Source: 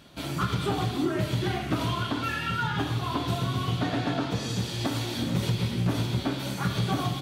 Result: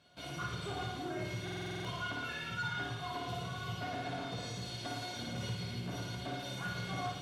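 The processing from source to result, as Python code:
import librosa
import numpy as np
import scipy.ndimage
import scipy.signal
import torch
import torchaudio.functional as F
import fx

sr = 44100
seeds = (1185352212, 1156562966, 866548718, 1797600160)

p1 = scipy.signal.sosfilt(scipy.signal.butter(4, 80.0, 'highpass', fs=sr, output='sos'), x)
p2 = fx.high_shelf(p1, sr, hz=11000.0, db=7.5)
p3 = p2 + 0.38 * np.pad(p2, (int(1.9 * sr / 1000.0), 0))[:len(p2)]
p4 = fx.quant_dither(p3, sr, seeds[0], bits=6, dither='none')
p5 = p3 + (p4 * librosa.db_to_amplitude(-8.0))
p6 = fx.comb_fb(p5, sr, f0_hz=720.0, decay_s=0.17, harmonics='all', damping=0.0, mix_pct=90)
p7 = 10.0 ** (-36.0 / 20.0) * np.tanh(p6 / 10.0 ** (-36.0 / 20.0))
p8 = fx.air_absorb(p7, sr, metres=60.0)
p9 = p8 + fx.room_flutter(p8, sr, wall_m=9.5, rt60_s=0.77, dry=0)
p10 = fx.buffer_glitch(p9, sr, at_s=(1.43,), block=2048, repeats=8)
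y = p10 * librosa.db_to_amplitude(2.5)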